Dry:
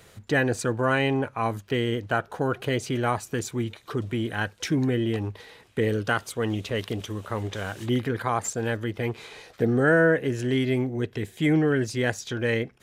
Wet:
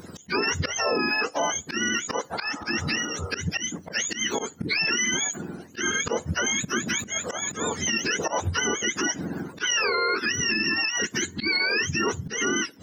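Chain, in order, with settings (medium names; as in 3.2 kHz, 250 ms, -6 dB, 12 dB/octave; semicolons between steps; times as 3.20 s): spectrum inverted on a logarithmic axis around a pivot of 830 Hz; harmonic-percussive split percussive +8 dB; peaking EQ 110 Hz -12 dB 0.57 oct; in parallel at +1 dB: compression 12:1, threshold -32 dBFS, peak gain reduction 18 dB; on the sum: slow attack 121 ms; peak limiter -15.5 dBFS, peak gain reduction 9 dB; spectral replace 2.47–3.29 s, 350–1400 Hz both; on a send at -23 dB: reverberation RT60 0.50 s, pre-delay 4 ms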